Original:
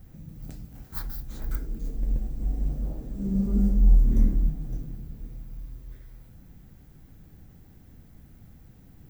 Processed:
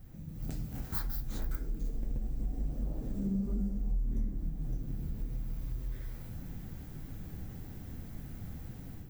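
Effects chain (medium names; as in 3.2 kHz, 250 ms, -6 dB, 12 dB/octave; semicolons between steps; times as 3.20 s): level rider gain up to 10 dB; flange 1.7 Hz, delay 6.6 ms, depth 5.9 ms, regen -60%; compression 4:1, threshold -34 dBFS, peak gain reduction 18 dB; trim +1.5 dB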